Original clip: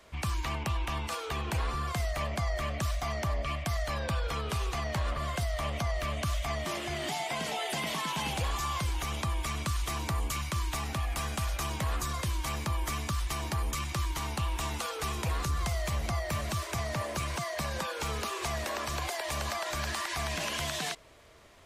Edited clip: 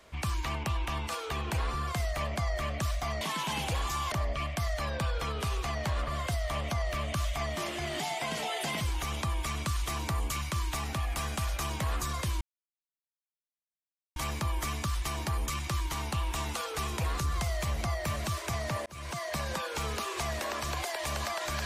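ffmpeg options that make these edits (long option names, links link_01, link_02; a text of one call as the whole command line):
ffmpeg -i in.wav -filter_complex "[0:a]asplit=6[link_01][link_02][link_03][link_04][link_05][link_06];[link_01]atrim=end=3.212[link_07];[link_02]atrim=start=7.898:end=8.812[link_08];[link_03]atrim=start=3.208:end=7.902[link_09];[link_04]atrim=start=8.808:end=12.41,asetpts=PTS-STARTPTS,afade=type=out:start_time=3.598:duration=0.004:curve=hsin,apad=pad_dur=1.75[link_10];[link_05]atrim=start=12.41:end=17.11,asetpts=PTS-STARTPTS,afade=type=in:duration=0.004:curve=hsin,afade=type=out:start_time=4.696:duration=0.004:curve=hsin[link_11];[link_06]atrim=start=17.11,asetpts=PTS-STARTPTS,afade=type=in:duration=0.52:curve=qsin[link_12];[link_07][link_08]acrossfade=duration=0.004:curve1=hsin:curve2=hsin[link_13];[link_13][link_09]acrossfade=duration=0.004:curve1=hsin:curve2=hsin[link_14];[link_10][link_11][link_12]concat=n=3:v=0:a=1[link_15];[link_14][link_15]acrossfade=duration=0.004:curve1=hsin:curve2=hsin" out.wav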